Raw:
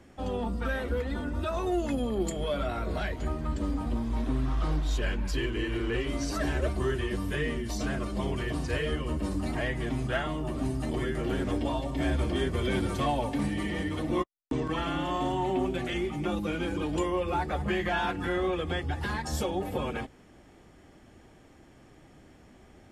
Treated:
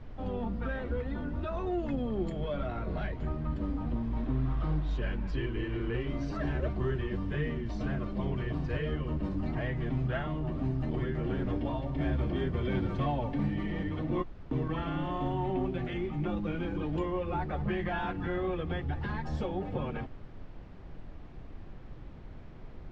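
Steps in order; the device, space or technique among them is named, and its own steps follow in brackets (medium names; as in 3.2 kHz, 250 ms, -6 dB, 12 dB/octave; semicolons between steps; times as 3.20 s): car interior (peaking EQ 140 Hz +7.5 dB 0.91 oct; treble shelf 4.8 kHz -5 dB; brown noise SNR 11 dB); distance through air 210 m; trim -4 dB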